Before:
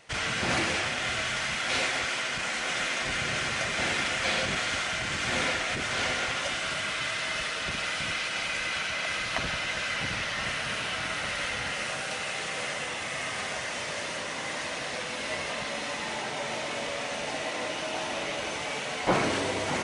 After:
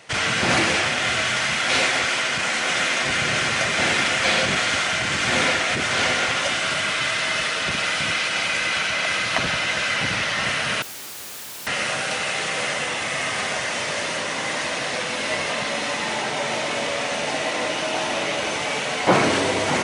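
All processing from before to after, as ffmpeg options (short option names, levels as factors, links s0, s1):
-filter_complex "[0:a]asettb=1/sr,asplit=3[s0][s1][s2];[s0]atrim=end=10.824[s3];[s1]atrim=start=10.82:end=11.67,asetpts=PTS-STARTPTS,afade=t=in:d=0.004:c=qsin,afade=t=out:st=0.846:d=0.004:c=qsin,bass=f=250:g=4,treble=f=4000:g=5,acrossover=split=130|770|2400[s4][s5][s6][s7];[s4]acompressor=threshold=0.00316:ratio=3[s8];[s5]acompressor=threshold=0.00316:ratio=3[s9];[s6]acompressor=threshold=0.00631:ratio=3[s10];[s7]acompressor=threshold=0.00708:ratio=3[s11];[s8][s9][s10][s11]amix=inputs=4:normalize=0,aeval=exprs='(mod(89.1*val(0)+1,2)-1)/89.1':c=same[s12];[s2]atrim=start=11.666[s13];[s3][s12]acrossfade=d=0.004:c1=hsin:c2=qsin[s14];[s14][s13]acrossfade=d=0.004:c1=qsin:c2=hsin,highpass=89,acontrast=42,volume=1.33"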